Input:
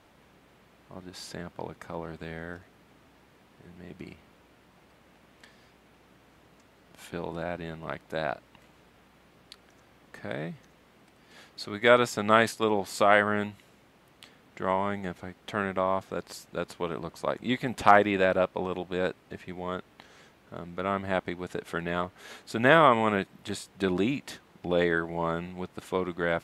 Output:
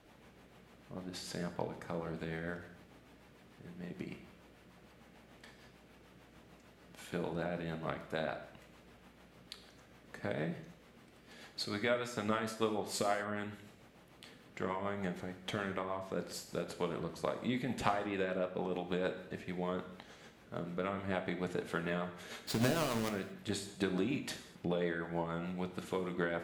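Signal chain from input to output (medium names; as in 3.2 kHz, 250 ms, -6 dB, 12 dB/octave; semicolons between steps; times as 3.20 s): 22.47–23.09 s: square wave that keeps the level; compression 6:1, threshold -30 dBFS, peak gain reduction 19.5 dB; rotary cabinet horn 6.7 Hz; gated-style reverb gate 270 ms falling, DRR 6 dB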